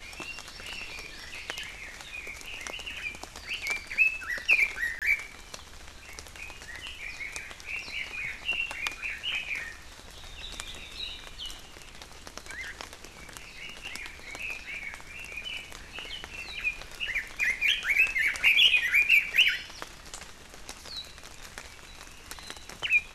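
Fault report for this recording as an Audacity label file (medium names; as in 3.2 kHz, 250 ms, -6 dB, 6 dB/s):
4.990000	5.020000	dropout 27 ms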